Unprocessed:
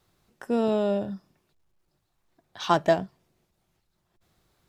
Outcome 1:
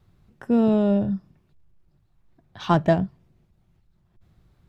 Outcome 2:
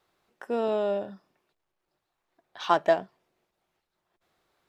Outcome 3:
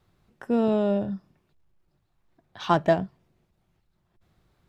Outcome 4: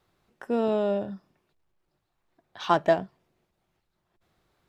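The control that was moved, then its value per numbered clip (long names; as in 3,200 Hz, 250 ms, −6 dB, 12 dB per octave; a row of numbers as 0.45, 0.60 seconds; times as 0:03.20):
bass and treble, bass: +14, −15, +5, −4 decibels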